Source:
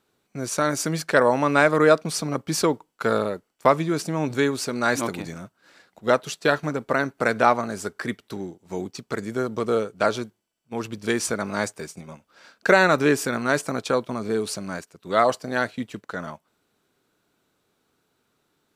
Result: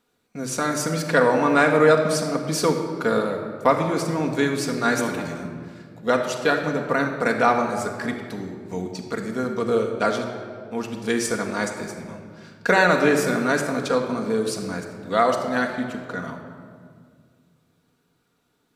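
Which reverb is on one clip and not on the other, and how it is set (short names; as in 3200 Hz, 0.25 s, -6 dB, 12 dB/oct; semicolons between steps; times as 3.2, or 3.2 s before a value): shoebox room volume 3200 m³, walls mixed, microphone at 1.8 m; gain -1.5 dB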